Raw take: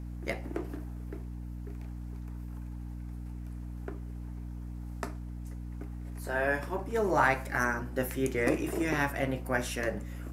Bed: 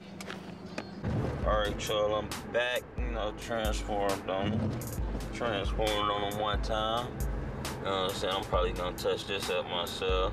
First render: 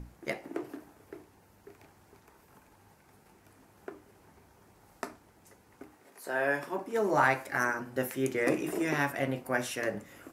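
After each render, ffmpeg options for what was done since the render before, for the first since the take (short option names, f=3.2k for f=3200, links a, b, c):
-af "bandreject=f=60:t=h:w=6,bandreject=f=120:t=h:w=6,bandreject=f=180:t=h:w=6,bandreject=f=240:t=h:w=6,bandreject=f=300:t=h:w=6"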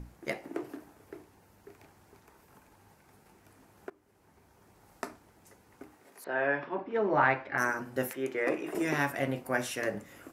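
-filter_complex "[0:a]asettb=1/sr,asplit=3[a][b][c];[a]atrim=end=6.244[d];[b]atrim=start=6.24:end=7.58,asetpts=PTS-STARTPTS,afade=t=in:d=0.004:c=qsin,afade=t=out:st=1.336:d=0.004:c=qsin,lowpass=f=3.4k:w=0.5412,lowpass=f=3.4k:w=1.3066[e];[c]atrim=start=7.576[f];[d][e]acrossfade=d=0.004:c1=hsin:c2=qsin[g];[g][f]acrossfade=d=0.004:c1=qsin:c2=hsin,asettb=1/sr,asplit=3[h][i][j];[h]atrim=end=8.134[k];[i]atrim=start=8.13:end=8.75,asetpts=PTS-STARTPTS,afade=t=in:d=0.004:c=qsin,afade=t=out:st=0.616:d=0.004:c=qsin,bass=f=250:g=-13,treble=f=4k:g=-12[l];[j]atrim=start=8.746[m];[k][l]acrossfade=d=0.004:c1=hsin:c2=qsin[n];[n][m]acrossfade=d=0.004:c1=qsin:c2=hsin,asplit=2[o][p];[o]atrim=end=3.9,asetpts=PTS-STARTPTS,afade=t=out:st=3.896:d=0.004:c=hsin:silence=0.149624[q];[p]atrim=start=3.9,asetpts=PTS-STARTPTS,afade=t=in:d=1.17:c=qsin:silence=0.149624[r];[q][r]concat=n=2:v=0:a=1"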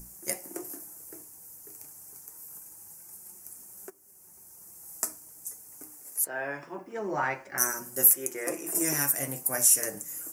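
-af "flanger=delay=5.3:depth=1.3:regen=48:speed=0.26:shape=sinusoidal,aexciter=amount=12.7:drive=8.9:freq=5.8k"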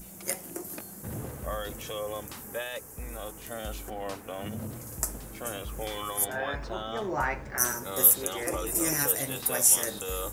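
-filter_complex "[1:a]volume=-6dB[a];[0:a][a]amix=inputs=2:normalize=0"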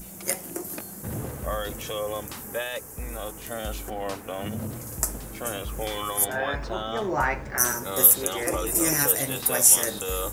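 -af "volume=4.5dB,alimiter=limit=-3dB:level=0:latency=1"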